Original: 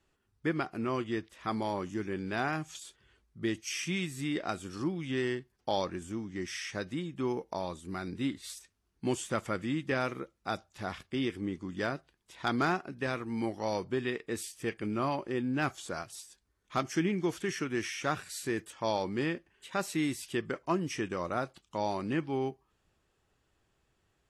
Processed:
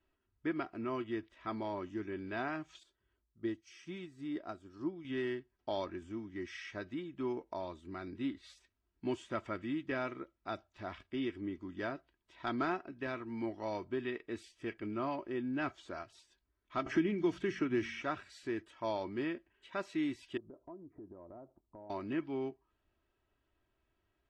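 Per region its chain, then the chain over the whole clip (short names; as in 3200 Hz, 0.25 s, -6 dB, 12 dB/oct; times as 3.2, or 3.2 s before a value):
2.83–5.05 bell 2500 Hz -7.5 dB 1.2 oct + upward expander, over -42 dBFS
16.86–18.02 low shelf 310 Hz +7.5 dB + de-hum 45.88 Hz, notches 5 + three-band squash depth 70%
20.37–21.9 inverse Chebyshev low-pass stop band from 2900 Hz, stop band 60 dB + compressor 5:1, threshold -43 dBFS
whole clip: LPF 3400 Hz 12 dB/oct; comb 3.1 ms, depth 52%; gain -6.5 dB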